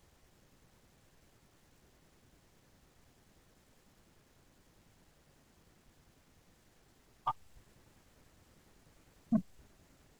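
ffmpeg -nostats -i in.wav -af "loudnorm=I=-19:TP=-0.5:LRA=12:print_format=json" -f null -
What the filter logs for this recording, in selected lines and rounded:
"input_i" : "-38.6",
"input_tp" : "-23.0",
"input_lra" : "23.4",
"input_thresh" : "-57.0",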